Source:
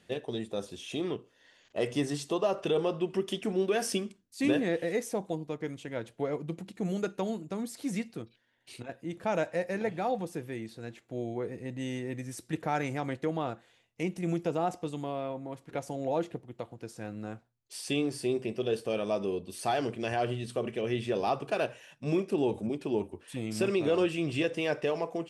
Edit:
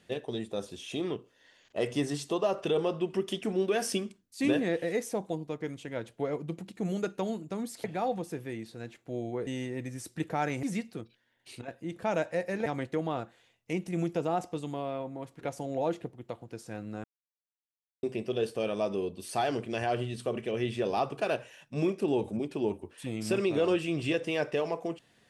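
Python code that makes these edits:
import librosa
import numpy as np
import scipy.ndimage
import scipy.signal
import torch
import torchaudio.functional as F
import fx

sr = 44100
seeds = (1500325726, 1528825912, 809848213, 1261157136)

y = fx.edit(x, sr, fx.move(start_s=7.84, length_s=2.03, to_s=12.96),
    fx.cut(start_s=11.5, length_s=0.3),
    fx.silence(start_s=17.34, length_s=0.99), tone=tone)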